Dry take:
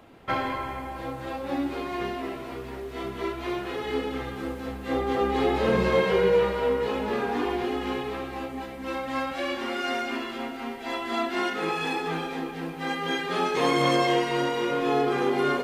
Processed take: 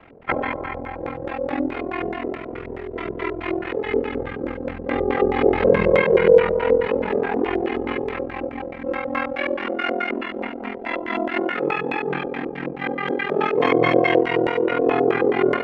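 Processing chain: LFO low-pass square 4.7 Hz 530–2200 Hz; ring modulator 21 Hz; gain +5.5 dB

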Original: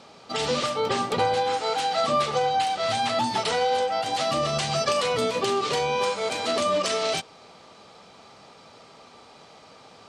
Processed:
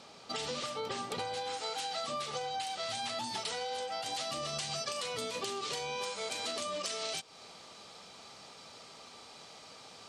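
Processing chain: high shelf 2900 Hz +6.5 dB, from 1.15 s +11.5 dB; compressor 6:1, threshold -29 dBFS, peak gain reduction 12 dB; gain -6 dB

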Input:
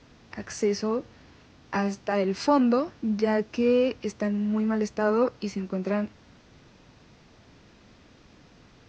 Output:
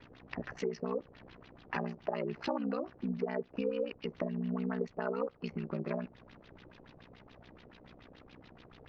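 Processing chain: LFO low-pass sine 7 Hz 480–3800 Hz; compressor 4:1, threshold -31 dBFS, peak gain reduction 15 dB; ring modulator 31 Hz

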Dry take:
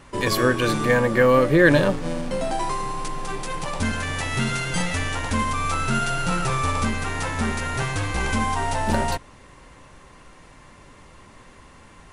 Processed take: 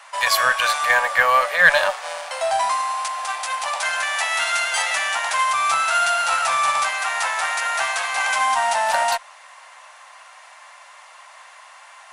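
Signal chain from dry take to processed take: elliptic high-pass 660 Hz, stop band 50 dB; in parallel at -12 dB: one-sided clip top -28.5 dBFS; on the sum: gain +5.5 dB

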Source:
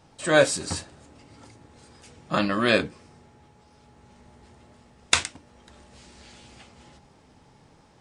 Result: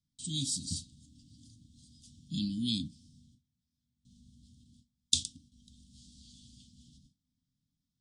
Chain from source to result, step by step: gate with hold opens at -44 dBFS; Chebyshev band-stop 270–3300 Hz, order 5; gain -4.5 dB

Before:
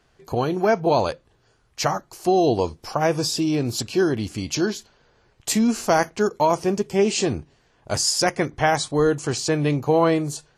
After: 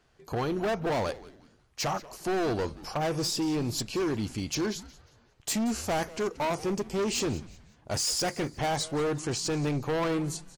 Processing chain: overloaded stage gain 21 dB; frequency-shifting echo 0.18 s, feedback 35%, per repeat -150 Hz, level -18 dB; gain -4.5 dB

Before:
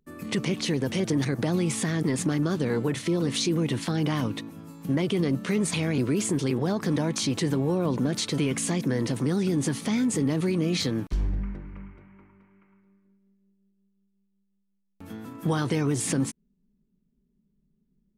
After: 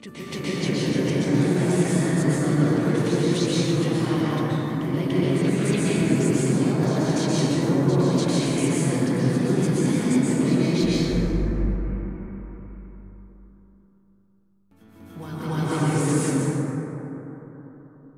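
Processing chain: reverse echo 0.292 s -8 dB; plate-style reverb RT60 3.8 s, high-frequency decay 0.3×, pre-delay 0.11 s, DRR -8.5 dB; gain -5.5 dB

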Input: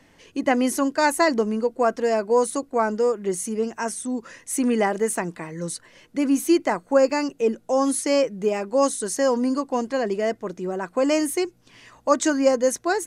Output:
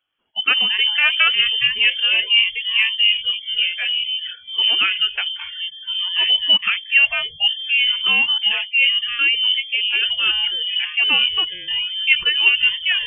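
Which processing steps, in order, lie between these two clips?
echoes that change speed 0.102 s, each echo -4 st, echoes 3, each echo -6 dB; spectral noise reduction 25 dB; inverted band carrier 3300 Hz; gain +3 dB

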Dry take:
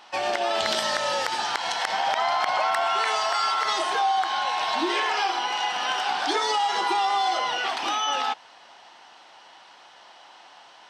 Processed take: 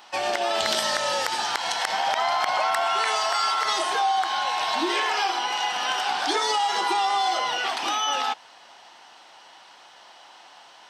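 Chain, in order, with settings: high shelf 8500 Hz +10 dB

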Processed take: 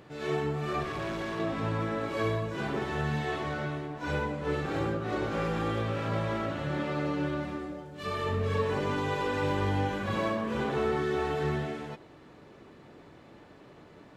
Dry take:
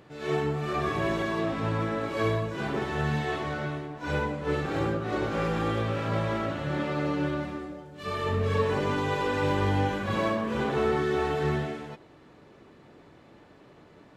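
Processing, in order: 0.83–1.4 tube stage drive 30 dB, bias 0.55; in parallel at +1 dB: compressor, threshold -34 dBFS, peak gain reduction 13 dB; on the sum: gain -5.5 dB

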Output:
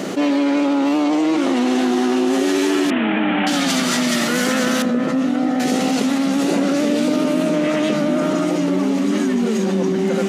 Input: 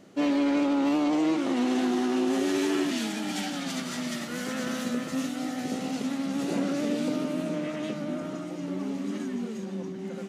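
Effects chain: 2.9–3.47 CVSD 16 kbps; HPF 190 Hz 12 dB/oct; in parallel at +2 dB: vocal rider; 4.82–5.6 on the sum: LPF 1000 Hz 6 dB/oct; fast leveller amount 70%; gain +2 dB

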